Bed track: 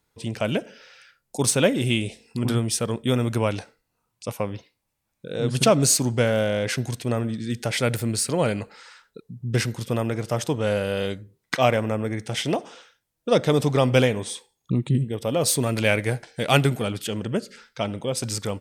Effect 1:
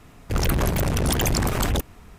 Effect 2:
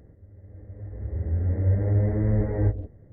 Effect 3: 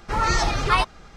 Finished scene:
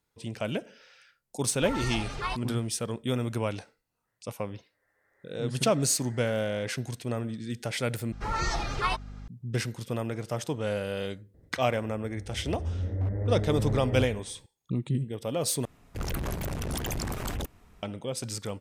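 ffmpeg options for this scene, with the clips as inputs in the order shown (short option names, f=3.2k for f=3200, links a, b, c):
-filter_complex "[3:a]asplit=2[a][b];[2:a]asplit=2[c][d];[0:a]volume=-7dB[e];[a]bandreject=f=1.3k:w=19[f];[c]highpass=f=1.5k:t=q:w=1.7[g];[b]aeval=exprs='val(0)+0.0251*(sin(2*PI*50*n/s)+sin(2*PI*2*50*n/s)/2+sin(2*PI*3*50*n/s)/3+sin(2*PI*4*50*n/s)/4+sin(2*PI*5*50*n/s)/5)':c=same[h];[d]aeval=exprs='0.15*(abs(mod(val(0)/0.15+3,4)-2)-1)':c=same[i];[e]asplit=3[j][k][l];[j]atrim=end=8.124[m];[h]atrim=end=1.16,asetpts=PTS-STARTPTS,volume=-8.5dB[n];[k]atrim=start=9.276:end=15.654[o];[1:a]atrim=end=2.18,asetpts=PTS-STARTPTS,volume=-10.5dB[p];[l]atrim=start=17.826[q];[f]atrim=end=1.16,asetpts=PTS-STARTPTS,volume=-12.5dB,afade=t=in:d=0.004:c=hsin,afade=t=out:st=1.156:d=0.004:c=hsin,adelay=1520[r];[g]atrim=end=3.12,asetpts=PTS-STARTPTS,volume=-10dB,afade=t=in:d=0.05,afade=t=out:st=3.07:d=0.05,adelay=4030[s];[i]atrim=end=3.12,asetpts=PTS-STARTPTS,volume=-6.5dB,afade=t=in:d=0.004:c=hsin,afade=t=out:st=3.116:d=0.004:c=hsin,adelay=11340[t];[m][n]acrossfade=d=0.004:c1=hsin:c2=hsin[u];[u][o]acrossfade=d=0.004:c1=hsin:c2=hsin[v];[v][p]acrossfade=d=0.004:c1=hsin:c2=hsin[w];[w][q]acrossfade=d=0.004:c1=hsin:c2=hsin[x];[x][r][s][t]amix=inputs=4:normalize=0"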